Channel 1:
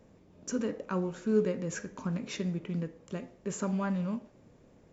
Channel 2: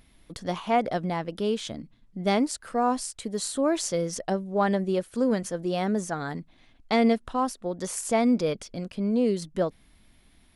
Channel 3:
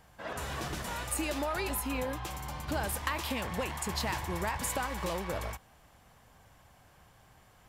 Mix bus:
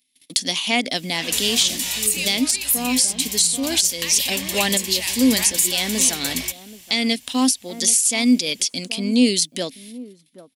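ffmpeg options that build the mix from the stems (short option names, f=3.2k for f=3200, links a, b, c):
-filter_complex "[0:a]adelay=700,volume=-9.5dB[a];[1:a]agate=range=-29dB:threshold=-53dB:ratio=16:detection=peak,highpass=140,equalizer=f=260:w=4.2:g=13.5,volume=0dB,asplit=2[b][c];[c]volume=-19dB[d];[2:a]adelay=950,volume=-2dB[e];[b][e]amix=inputs=2:normalize=0,aexciter=amount=15.1:drive=4:freq=2.1k,alimiter=limit=-6dB:level=0:latency=1:release=470,volume=0dB[f];[d]aecho=0:1:780:1[g];[a][f][g]amix=inputs=3:normalize=0"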